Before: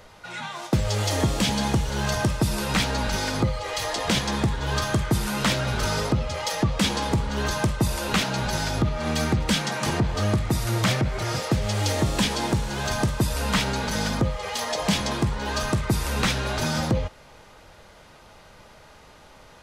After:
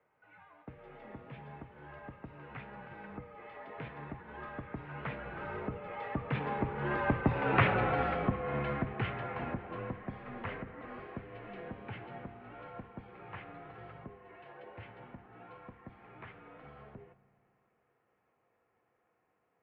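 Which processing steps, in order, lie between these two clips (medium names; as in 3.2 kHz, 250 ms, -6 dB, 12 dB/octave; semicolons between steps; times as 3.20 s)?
Doppler pass-by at 7.62 s, 25 m/s, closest 13 m; reverberation RT60 1.8 s, pre-delay 3 ms, DRR 13 dB; mistuned SSB -79 Hz 190–2500 Hz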